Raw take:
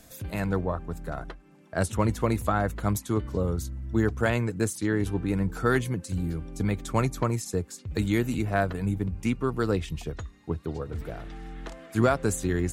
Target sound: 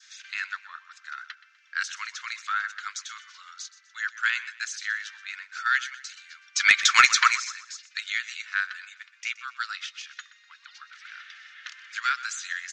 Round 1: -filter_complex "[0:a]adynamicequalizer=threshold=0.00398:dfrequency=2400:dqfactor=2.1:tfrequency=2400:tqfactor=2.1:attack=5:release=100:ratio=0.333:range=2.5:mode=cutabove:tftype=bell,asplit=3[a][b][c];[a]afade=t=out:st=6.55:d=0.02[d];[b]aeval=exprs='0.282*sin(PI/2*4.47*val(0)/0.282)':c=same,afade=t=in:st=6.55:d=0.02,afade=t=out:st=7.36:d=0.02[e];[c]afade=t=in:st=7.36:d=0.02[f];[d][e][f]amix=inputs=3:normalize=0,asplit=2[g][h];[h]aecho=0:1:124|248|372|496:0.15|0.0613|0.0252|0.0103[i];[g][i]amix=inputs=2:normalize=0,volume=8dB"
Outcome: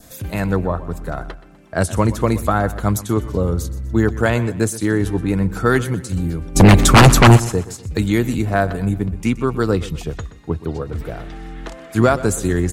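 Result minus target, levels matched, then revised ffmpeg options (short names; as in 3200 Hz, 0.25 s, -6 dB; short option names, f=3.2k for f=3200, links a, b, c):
4000 Hz band -6.0 dB
-filter_complex "[0:a]adynamicequalizer=threshold=0.00398:dfrequency=2400:dqfactor=2.1:tfrequency=2400:tqfactor=2.1:attack=5:release=100:ratio=0.333:range=2.5:mode=cutabove:tftype=bell,asuperpass=centerf=3100:order=12:qfactor=0.61,asplit=3[a][b][c];[a]afade=t=out:st=6.55:d=0.02[d];[b]aeval=exprs='0.282*sin(PI/2*4.47*val(0)/0.282)':c=same,afade=t=in:st=6.55:d=0.02,afade=t=out:st=7.36:d=0.02[e];[c]afade=t=in:st=7.36:d=0.02[f];[d][e][f]amix=inputs=3:normalize=0,asplit=2[g][h];[h]aecho=0:1:124|248|372|496:0.15|0.0613|0.0252|0.0103[i];[g][i]amix=inputs=2:normalize=0,volume=8dB"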